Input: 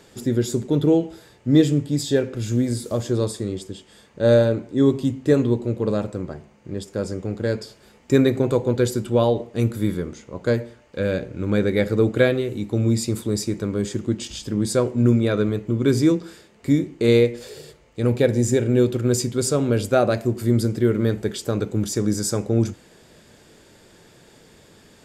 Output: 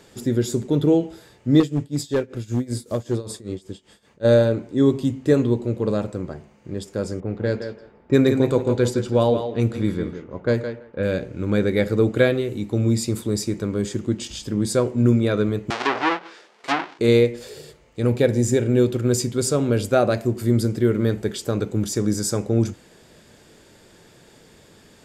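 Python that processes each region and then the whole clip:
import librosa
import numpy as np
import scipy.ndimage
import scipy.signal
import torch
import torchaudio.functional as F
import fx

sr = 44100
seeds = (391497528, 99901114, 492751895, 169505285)

y = fx.chain(x, sr, fx.tremolo(hz=5.2, depth=0.88),
    fx.clip_hard(threshold_db=-15.0), at=(1.6, 4.25))
y = fx.chain(y, sr, fx.high_shelf(hz=11000.0, db=-4.5),
    fx.echo_thinned(ms=166, feedback_pct=16, hz=160.0, wet_db=-7.5),
    fx.env_lowpass(base_hz=1100.0, full_db=-14.5), at=(7.2, 11.03))
y = fx.chain(y, sr, fx.halfwave_hold(),
    fx.bandpass_edges(low_hz=640.0, high_hz=6100.0),
    fx.env_lowpass_down(base_hz=2400.0, full_db=-18.5), at=(15.7, 16.99))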